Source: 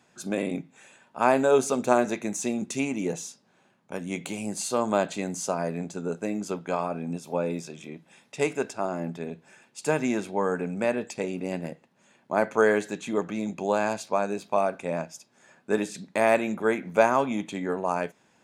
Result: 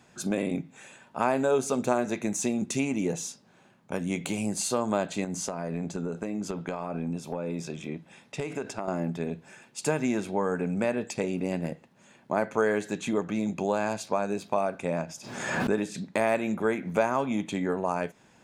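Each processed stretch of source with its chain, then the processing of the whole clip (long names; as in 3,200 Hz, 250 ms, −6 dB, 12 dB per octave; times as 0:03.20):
0:05.24–0:08.88: high-shelf EQ 6,200 Hz −6.5 dB + downward compressor 10 to 1, threshold −31 dBFS
0:15.03–0:16.14: high-shelf EQ 5,500 Hz −4.5 dB + background raised ahead of every attack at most 57 dB per second
whole clip: low-shelf EQ 110 Hz +10.5 dB; downward compressor 2 to 1, threshold −31 dBFS; level +3.5 dB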